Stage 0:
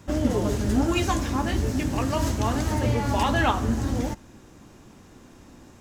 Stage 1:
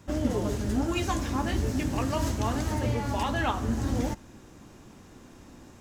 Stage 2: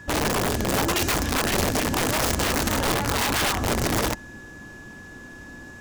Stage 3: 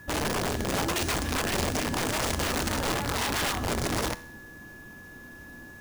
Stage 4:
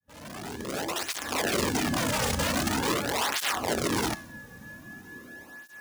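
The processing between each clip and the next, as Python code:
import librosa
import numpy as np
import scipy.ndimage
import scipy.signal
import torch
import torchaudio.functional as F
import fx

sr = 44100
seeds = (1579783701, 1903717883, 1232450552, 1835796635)

y1 = fx.rider(x, sr, range_db=10, speed_s=0.5)
y1 = y1 * 10.0 ** (-4.0 / 20.0)
y2 = (np.mod(10.0 ** (23.0 / 20.0) * y1 + 1.0, 2.0) - 1.0) / 10.0 ** (23.0 / 20.0)
y2 = y2 + 10.0 ** (-48.0 / 20.0) * np.sin(2.0 * np.pi * 1700.0 * np.arange(len(y2)) / sr)
y2 = y2 * 10.0 ** (5.5 / 20.0)
y3 = fx.comb_fb(y2, sr, f0_hz=81.0, decay_s=0.76, harmonics='all', damping=0.0, mix_pct=50)
y3 = fx.sample_hold(y3, sr, seeds[0], rate_hz=16000.0, jitter_pct=0)
y4 = fx.fade_in_head(y3, sr, length_s=1.48)
y4 = fx.flanger_cancel(y4, sr, hz=0.44, depth_ms=3.1)
y4 = y4 * 10.0 ** (4.0 / 20.0)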